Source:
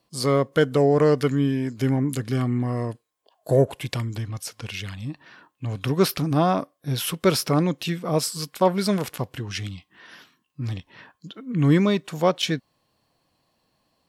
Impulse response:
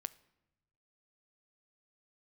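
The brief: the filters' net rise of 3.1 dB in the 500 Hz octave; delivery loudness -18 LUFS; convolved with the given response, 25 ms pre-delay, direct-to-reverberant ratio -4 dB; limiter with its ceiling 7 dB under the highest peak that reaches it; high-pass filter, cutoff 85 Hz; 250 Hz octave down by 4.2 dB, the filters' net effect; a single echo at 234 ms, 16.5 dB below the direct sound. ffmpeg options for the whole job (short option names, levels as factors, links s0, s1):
-filter_complex "[0:a]highpass=85,equalizer=f=250:t=o:g=-8,equalizer=f=500:t=o:g=6,alimiter=limit=0.266:level=0:latency=1,aecho=1:1:234:0.15,asplit=2[s0][s1];[1:a]atrim=start_sample=2205,adelay=25[s2];[s1][s2]afir=irnorm=-1:irlink=0,volume=2.24[s3];[s0][s3]amix=inputs=2:normalize=0,volume=1.19"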